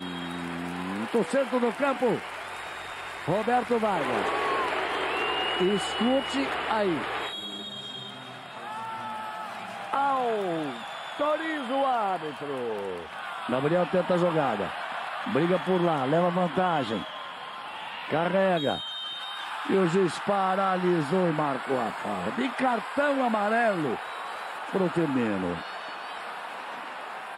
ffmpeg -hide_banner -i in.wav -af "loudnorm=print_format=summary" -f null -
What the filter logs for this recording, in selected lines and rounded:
Input Integrated:    -28.3 LUFS
Input True Peak:     -11.2 dBTP
Input LRA:             5.0 LU
Input Threshold:     -38.3 LUFS